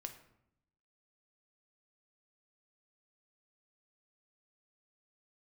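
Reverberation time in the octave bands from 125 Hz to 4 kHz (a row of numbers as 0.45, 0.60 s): 1.1, 1.0, 0.80, 0.75, 0.65, 0.50 s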